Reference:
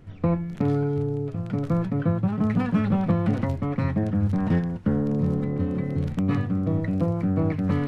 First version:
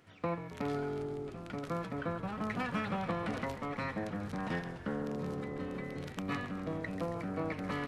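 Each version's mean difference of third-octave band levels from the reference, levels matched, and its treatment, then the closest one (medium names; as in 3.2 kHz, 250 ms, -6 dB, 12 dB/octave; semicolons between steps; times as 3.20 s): 8.5 dB: high-pass 1.2 kHz 6 dB/octave; frequency-shifting echo 136 ms, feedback 64%, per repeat -43 Hz, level -13 dB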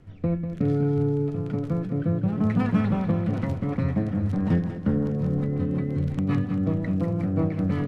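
2.0 dB: rotary cabinet horn 0.65 Hz, later 5.5 Hz, at 3.01 s; on a send: feedback delay 195 ms, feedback 58%, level -10 dB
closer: second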